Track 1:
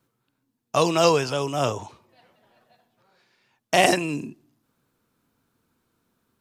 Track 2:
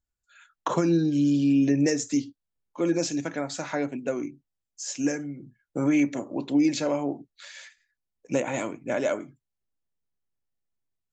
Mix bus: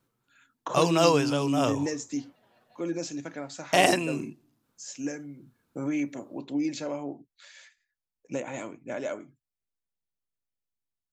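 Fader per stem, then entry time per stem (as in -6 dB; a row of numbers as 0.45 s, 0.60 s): -3.0 dB, -7.0 dB; 0.00 s, 0.00 s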